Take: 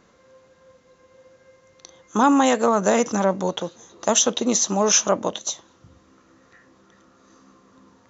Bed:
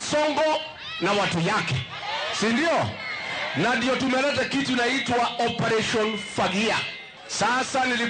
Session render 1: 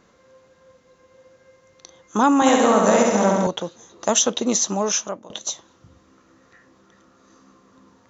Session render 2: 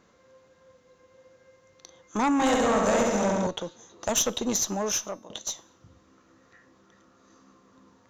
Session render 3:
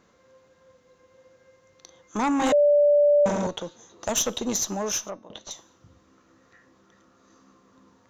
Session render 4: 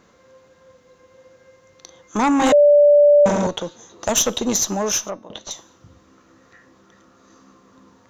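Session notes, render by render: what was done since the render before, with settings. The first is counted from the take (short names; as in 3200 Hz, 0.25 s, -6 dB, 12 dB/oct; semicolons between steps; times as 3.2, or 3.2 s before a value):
2.35–3.47 flutter echo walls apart 11.7 m, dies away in 1.4 s; 4.64–5.3 fade out, to -23.5 dB
one diode to ground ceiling -16 dBFS; resonator 100 Hz, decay 0.63 s, harmonics odd, mix 40%
2.52–3.26 bleep 584 Hz -14.5 dBFS; 5.1–5.51 air absorption 180 m
gain +6.5 dB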